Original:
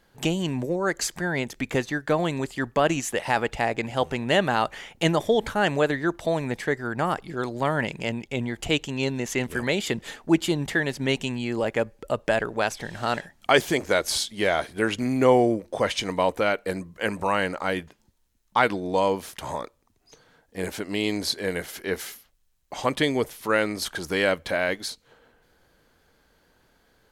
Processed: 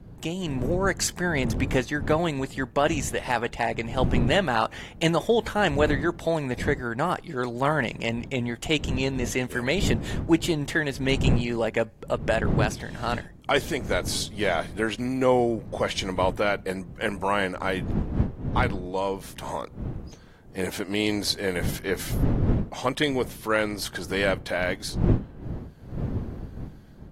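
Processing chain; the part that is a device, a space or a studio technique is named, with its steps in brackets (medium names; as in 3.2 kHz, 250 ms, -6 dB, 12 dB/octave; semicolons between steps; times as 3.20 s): smartphone video outdoors (wind noise 180 Hz -30 dBFS; level rider gain up to 8.5 dB; trim -7 dB; AAC 48 kbps 44.1 kHz)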